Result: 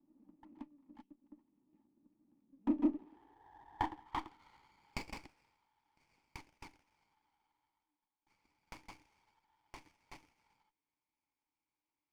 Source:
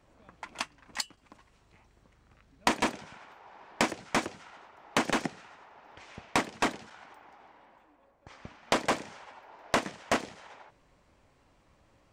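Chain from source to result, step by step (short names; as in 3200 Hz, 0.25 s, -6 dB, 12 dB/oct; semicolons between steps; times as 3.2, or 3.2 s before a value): band-pass sweep 220 Hz -> 6100 Hz, 2.63–5.69; vowel filter u; running maximum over 9 samples; gain +10 dB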